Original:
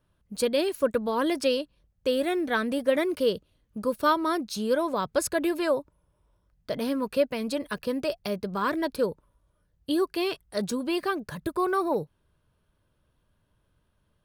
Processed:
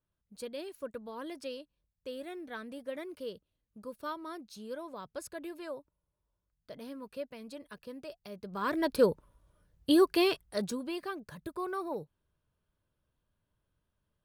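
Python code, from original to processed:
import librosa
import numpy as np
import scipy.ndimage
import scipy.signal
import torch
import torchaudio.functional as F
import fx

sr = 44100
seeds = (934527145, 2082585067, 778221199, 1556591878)

y = fx.gain(x, sr, db=fx.line((8.29, -16.0), (8.7, -4.5), (9.04, 2.0), (10.2, 2.0), (10.99, -10.5)))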